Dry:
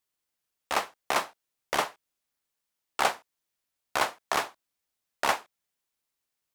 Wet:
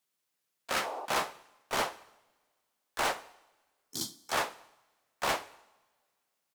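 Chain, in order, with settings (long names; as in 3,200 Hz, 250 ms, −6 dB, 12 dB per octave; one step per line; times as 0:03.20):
healed spectral selection 0:00.75–0:01.03, 330–1,200 Hz
high-pass filter 120 Hz 24 dB per octave
gain on a spectral selection 0:03.24–0:04.33, 360–4,100 Hz −30 dB
hard clipping −26.5 dBFS, distortion −6 dB
coupled-rooms reverb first 0.81 s, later 2.3 s, from −21 dB, DRR 14 dB
pitch-shifted copies added −5 semitones −5 dB, +4 semitones −9 dB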